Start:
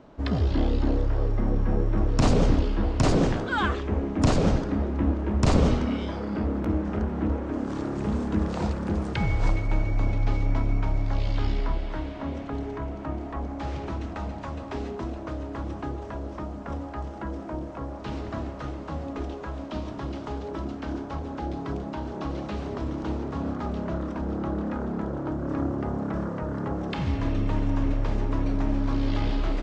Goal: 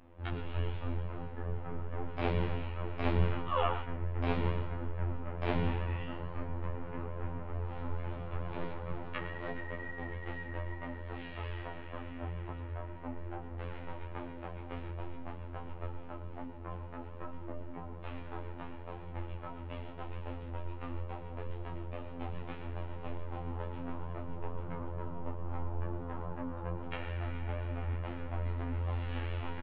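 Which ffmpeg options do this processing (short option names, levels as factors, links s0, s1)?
-filter_complex "[0:a]highpass=f=280:t=q:w=0.5412,highpass=f=280:t=q:w=1.307,lowpass=f=3400:t=q:w=0.5176,lowpass=f=3400:t=q:w=0.7071,lowpass=f=3400:t=q:w=1.932,afreqshift=-350,afftfilt=real='hypot(re,im)*cos(PI*b)':imag='0':win_size=2048:overlap=0.75,asplit=2[s0][s1];[s1]aecho=0:1:114:0.266[s2];[s0][s2]amix=inputs=2:normalize=0,flanger=delay=19:depth=2.5:speed=2.3,volume=1.26"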